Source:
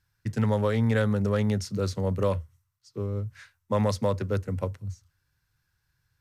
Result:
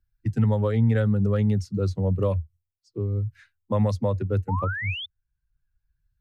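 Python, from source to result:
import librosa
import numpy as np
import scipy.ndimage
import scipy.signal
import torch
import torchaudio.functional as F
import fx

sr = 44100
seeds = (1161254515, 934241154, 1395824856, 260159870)

y = fx.bin_expand(x, sr, power=1.5)
y = fx.tilt_eq(y, sr, slope=-2.0)
y = fx.spec_paint(y, sr, seeds[0], shape='rise', start_s=4.48, length_s=0.58, low_hz=820.0, high_hz=3600.0, level_db=-33.0)
y = fx.band_squash(y, sr, depth_pct=40)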